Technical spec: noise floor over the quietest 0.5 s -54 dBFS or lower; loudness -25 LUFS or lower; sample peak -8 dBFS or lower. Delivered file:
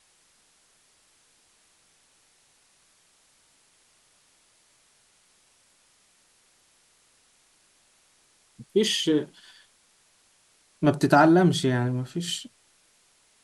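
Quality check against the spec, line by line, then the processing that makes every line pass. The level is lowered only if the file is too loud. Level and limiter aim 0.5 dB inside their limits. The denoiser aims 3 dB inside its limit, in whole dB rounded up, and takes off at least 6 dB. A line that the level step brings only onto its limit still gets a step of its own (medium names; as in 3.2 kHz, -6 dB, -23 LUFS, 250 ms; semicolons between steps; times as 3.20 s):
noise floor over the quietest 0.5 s -63 dBFS: pass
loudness -23.0 LUFS: fail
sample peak -6.0 dBFS: fail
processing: trim -2.5 dB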